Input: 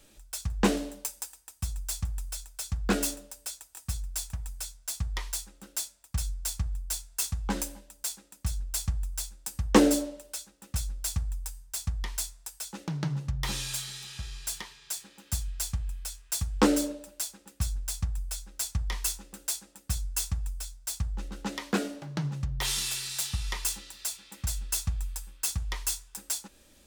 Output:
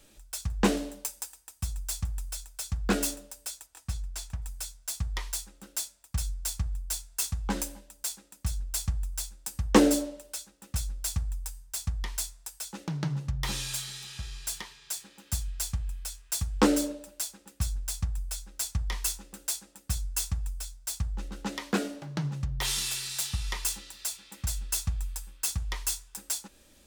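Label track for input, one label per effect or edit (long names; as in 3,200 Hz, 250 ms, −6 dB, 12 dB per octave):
3.660000	4.420000	high-shelf EQ 7,800 Hz −11 dB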